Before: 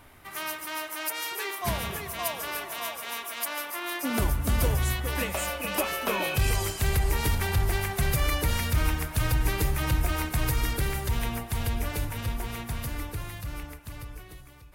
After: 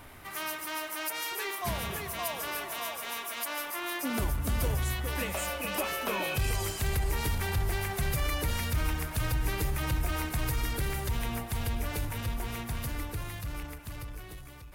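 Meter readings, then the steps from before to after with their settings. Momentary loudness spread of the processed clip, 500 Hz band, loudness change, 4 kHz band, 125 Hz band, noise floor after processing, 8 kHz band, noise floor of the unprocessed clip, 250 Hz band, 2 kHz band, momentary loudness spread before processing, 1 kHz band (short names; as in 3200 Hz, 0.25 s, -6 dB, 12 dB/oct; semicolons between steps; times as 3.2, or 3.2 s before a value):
7 LU, -3.5 dB, -3.5 dB, -3.0 dB, -4.0 dB, -45 dBFS, -3.5 dB, -47 dBFS, -3.5 dB, -3.0 dB, 10 LU, -3.0 dB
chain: G.711 law mismatch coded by mu; in parallel at -1 dB: limiter -22 dBFS, peak gain reduction 8 dB; on the sum: gain -8.5 dB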